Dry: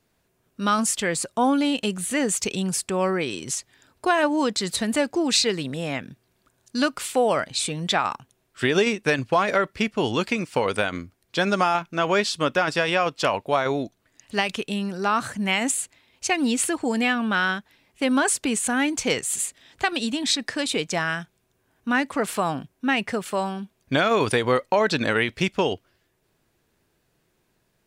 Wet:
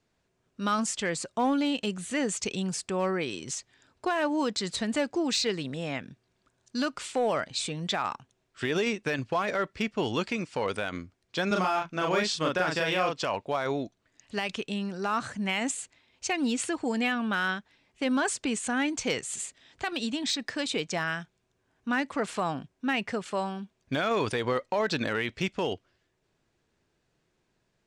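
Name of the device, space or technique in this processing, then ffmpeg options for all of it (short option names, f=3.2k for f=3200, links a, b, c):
limiter into clipper: -filter_complex "[0:a]lowpass=f=7.9k:w=0.5412,lowpass=f=7.9k:w=1.3066,alimiter=limit=-13dB:level=0:latency=1:release=24,asoftclip=type=hard:threshold=-14.5dB,asettb=1/sr,asplit=3[a][b][c];[a]atrim=end=11.474[d];[b]atrim=start=11.47:end=13.21,asetpts=PTS-STARTPTS,afade=t=in:d=0.004:c=qsin,afade=t=out:st=1.736:d=0.004:c=qsin,asplit=2[e][f];[f]adelay=38,volume=-2dB[g];[e][g]amix=inputs=2:normalize=0,atrim=end_sample=76734[h];[c]atrim=start=13.206[i];[d][h]acrossfade=d=0.004:c1=hsin:c2=qsin[j];[j][i]acrossfade=d=0.004:c1=qsin:c2=hsin,volume=-5dB"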